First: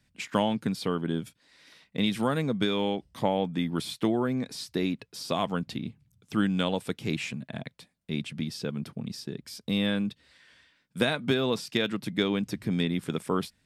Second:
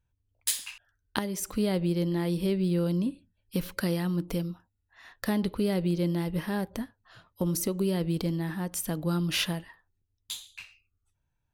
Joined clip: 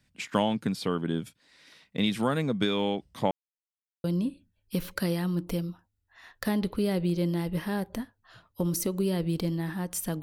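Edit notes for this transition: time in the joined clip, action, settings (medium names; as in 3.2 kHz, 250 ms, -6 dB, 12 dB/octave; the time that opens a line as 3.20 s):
first
3.31–4.04 s: mute
4.04 s: go over to second from 2.85 s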